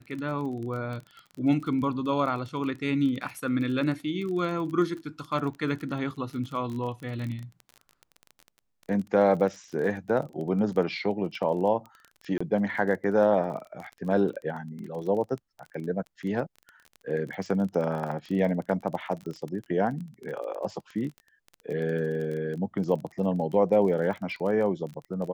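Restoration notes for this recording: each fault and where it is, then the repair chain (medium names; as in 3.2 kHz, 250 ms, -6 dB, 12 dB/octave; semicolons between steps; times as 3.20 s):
crackle 25 per s -34 dBFS
12.38–12.40 s: dropout 25 ms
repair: de-click; interpolate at 12.38 s, 25 ms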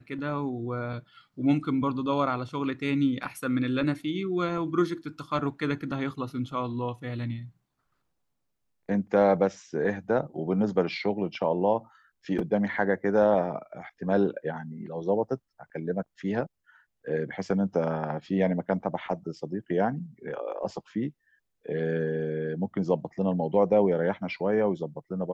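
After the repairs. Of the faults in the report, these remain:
nothing left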